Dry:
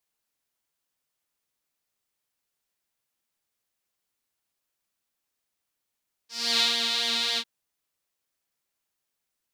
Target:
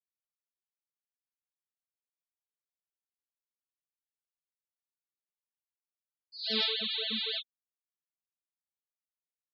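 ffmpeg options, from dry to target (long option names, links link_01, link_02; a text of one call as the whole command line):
ffmpeg -i in.wav -af "afftfilt=real='re*gte(hypot(re,im),0.0794)':imag='im*gte(hypot(re,im),0.0794)':win_size=1024:overlap=0.75,asetrate=41625,aresample=44100,atempo=1.05946,lowshelf=frequency=630:width_type=q:width=1.5:gain=9.5,volume=-5.5dB" out.wav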